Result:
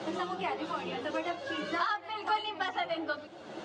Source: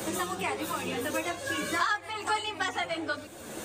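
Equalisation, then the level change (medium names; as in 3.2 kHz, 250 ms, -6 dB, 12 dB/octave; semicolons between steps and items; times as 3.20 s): cabinet simulation 200–4100 Hz, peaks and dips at 250 Hz -10 dB, 470 Hz -8 dB, 1.1 kHz -5 dB, 1.7 kHz -7 dB, 2.4 kHz -9 dB, 3.7 kHz -6 dB; +2.0 dB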